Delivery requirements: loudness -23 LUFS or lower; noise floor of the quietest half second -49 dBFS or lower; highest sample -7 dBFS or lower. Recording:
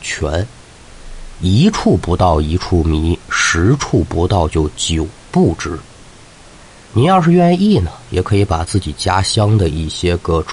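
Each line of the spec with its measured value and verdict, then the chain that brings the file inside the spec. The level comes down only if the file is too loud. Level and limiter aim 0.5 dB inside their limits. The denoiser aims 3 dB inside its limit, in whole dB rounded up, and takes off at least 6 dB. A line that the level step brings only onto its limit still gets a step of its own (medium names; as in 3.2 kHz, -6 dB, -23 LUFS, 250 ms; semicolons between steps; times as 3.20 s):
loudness -14.5 LUFS: fail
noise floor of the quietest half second -40 dBFS: fail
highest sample -1.5 dBFS: fail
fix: noise reduction 6 dB, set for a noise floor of -40 dBFS; trim -9 dB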